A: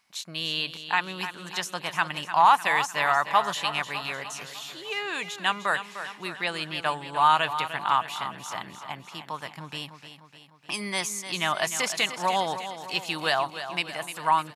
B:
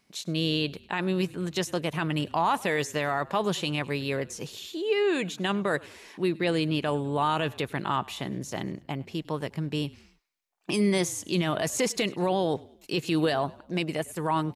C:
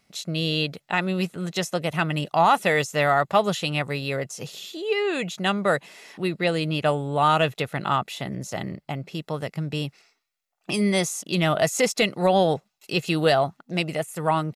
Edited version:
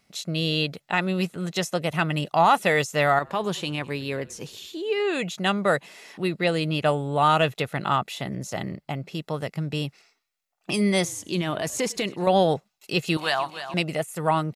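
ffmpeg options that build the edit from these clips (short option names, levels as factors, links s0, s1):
-filter_complex "[1:a]asplit=2[s0][s1];[2:a]asplit=4[s2][s3][s4][s5];[s2]atrim=end=3.192[s6];[s0]atrim=start=3.188:end=5.002[s7];[s3]atrim=start=4.998:end=11.052[s8];[s1]atrim=start=11.048:end=12.272[s9];[s4]atrim=start=12.268:end=13.172[s10];[0:a]atrim=start=13.168:end=13.742[s11];[s5]atrim=start=13.738[s12];[s6][s7]acrossfade=d=0.004:c1=hsin:c2=hsin[s13];[s13][s8]acrossfade=d=0.004:c1=hsin:c2=hsin[s14];[s14][s9]acrossfade=d=0.004:c1=hsin:c2=hsin[s15];[s15][s10]acrossfade=d=0.004:c1=hsin:c2=hsin[s16];[s16][s11]acrossfade=d=0.004:c1=hsin:c2=hsin[s17];[s17][s12]acrossfade=d=0.004:c1=hsin:c2=hsin"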